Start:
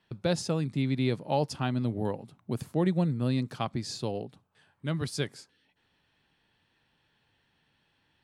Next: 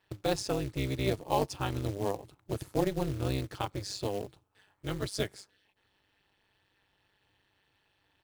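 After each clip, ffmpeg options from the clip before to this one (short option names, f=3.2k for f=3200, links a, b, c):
-af "aecho=1:1:2.3:0.95,tremolo=f=200:d=0.947,acrusher=bits=4:mode=log:mix=0:aa=0.000001"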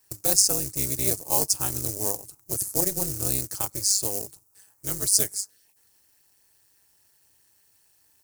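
-af "aexciter=amount=15.6:drive=6.6:freq=5.3k,volume=-1.5dB"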